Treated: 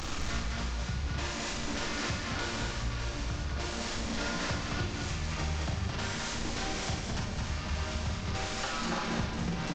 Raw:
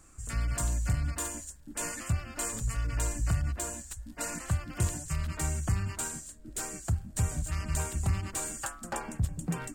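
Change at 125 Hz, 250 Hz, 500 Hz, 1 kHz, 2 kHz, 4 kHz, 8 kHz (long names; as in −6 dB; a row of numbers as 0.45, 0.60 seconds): −3.5, +3.0, +4.0, +4.0, +5.5, +10.5, −6.5 decibels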